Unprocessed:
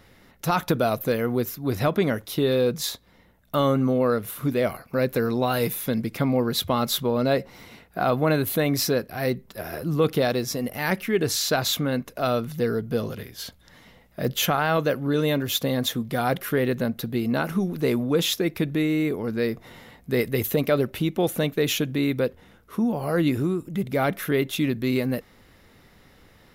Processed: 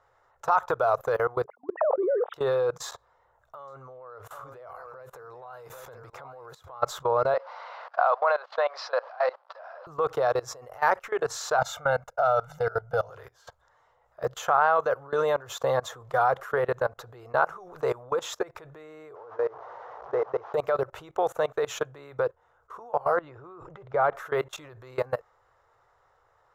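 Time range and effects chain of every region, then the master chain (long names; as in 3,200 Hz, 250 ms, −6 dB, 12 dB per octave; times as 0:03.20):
0:01.44–0:02.34: three sine waves on the formant tracks + flat-topped band-pass 360 Hz, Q 0.84 + level that may fall only so fast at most 20 dB per second
0:02.89–0:06.83: downward compressor 5 to 1, threshold −30 dBFS + single-tap delay 787 ms −13.5 dB
0:07.34–0:09.87: converter with a step at zero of −39 dBFS + Chebyshev band-pass filter 540–4,800 Hz, order 4 + high-shelf EQ 3,600 Hz +3.5 dB
0:11.58–0:13.10: noise gate −42 dBFS, range −13 dB + comb filter 1.4 ms, depth 86%
0:19.15–0:20.54: linear delta modulator 32 kbit/s, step −30.5 dBFS + resonant band-pass 580 Hz, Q 0.84
0:23.16–0:24.15: high-frequency loss of the air 200 metres + background raised ahead of every attack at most 39 dB per second
whole clip: drawn EQ curve 130 Hz 0 dB, 210 Hz −25 dB, 450 Hz +6 dB, 910 Hz +11 dB, 1,300 Hz +8 dB, 2,200 Hz −13 dB, 4,600 Hz −17 dB, 7,200 Hz −9 dB, 10,000 Hz −25 dB; output level in coarse steps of 22 dB; tilt shelving filter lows −7 dB; level +2 dB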